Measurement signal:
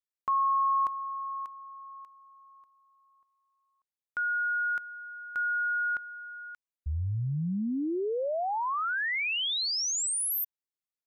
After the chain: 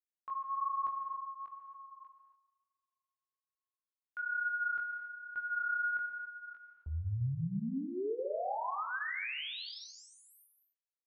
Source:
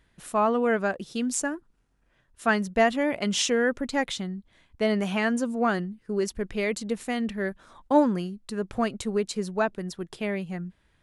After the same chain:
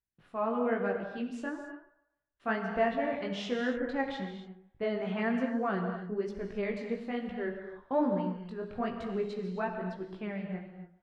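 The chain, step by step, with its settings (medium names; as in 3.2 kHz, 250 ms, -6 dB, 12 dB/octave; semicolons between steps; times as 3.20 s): gate -52 dBFS, range -21 dB; dynamic bell 6.9 kHz, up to +5 dB, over -43 dBFS, Q 0.81; level rider gain up to 4.5 dB; chorus 1.1 Hz, delay 15.5 ms, depth 7 ms; distance through air 370 m; on a send: feedback echo behind a band-pass 143 ms, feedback 31%, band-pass 930 Hz, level -15.5 dB; on the sum: gated-style reverb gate 300 ms flat, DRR 4.5 dB; trim -8 dB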